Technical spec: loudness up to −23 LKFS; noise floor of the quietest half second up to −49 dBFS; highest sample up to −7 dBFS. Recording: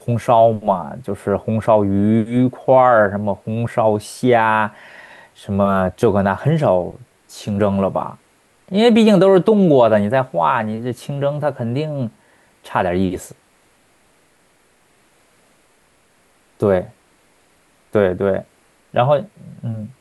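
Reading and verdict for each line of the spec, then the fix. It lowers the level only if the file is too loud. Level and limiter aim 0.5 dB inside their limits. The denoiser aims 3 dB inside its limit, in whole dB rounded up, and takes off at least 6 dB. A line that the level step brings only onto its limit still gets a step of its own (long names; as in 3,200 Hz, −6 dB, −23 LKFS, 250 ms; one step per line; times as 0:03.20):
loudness −17.0 LKFS: out of spec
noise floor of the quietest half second −57 dBFS: in spec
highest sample −2.5 dBFS: out of spec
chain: level −6.5 dB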